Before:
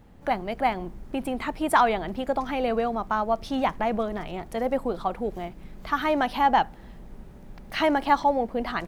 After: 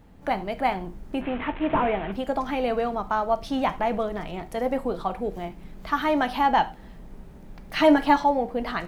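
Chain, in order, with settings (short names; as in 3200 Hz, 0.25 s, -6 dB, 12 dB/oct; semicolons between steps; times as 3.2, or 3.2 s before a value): 1.21–2.12 delta modulation 16 kbps, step -30.5 dBFS; 7.75–8.18 comb 6.6 ms, depth 77%; non-linear reverb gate 0.13 s falling, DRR 9.5 dB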